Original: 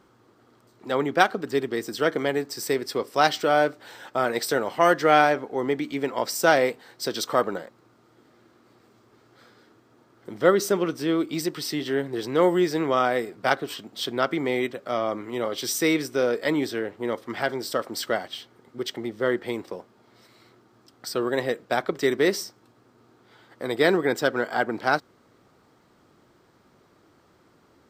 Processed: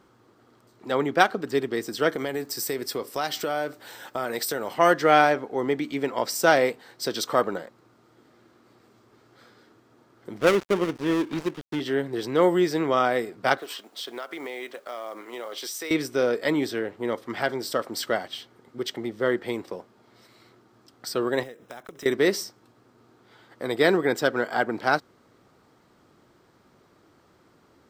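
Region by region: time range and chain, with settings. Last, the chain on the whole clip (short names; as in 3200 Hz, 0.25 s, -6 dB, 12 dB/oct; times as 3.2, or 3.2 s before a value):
2.09–4.74 high shelf 9200 Hz +12 dB + compressor 3:1, threshold -25 dBFS
10.38–11.8 switching dead time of 0.29 ms + LPF 3700 Hz 6 dB/oct
13.58–15.91 HPF 470 Hz + compressor, threshold -31 dBFS + companded quantiser 6-bit
21.43–22.06 block floating point 5-bit + compressor, threshold -38 dBFS + Butterworth band-stop 4500 Hz, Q 5.6
whole clip: dry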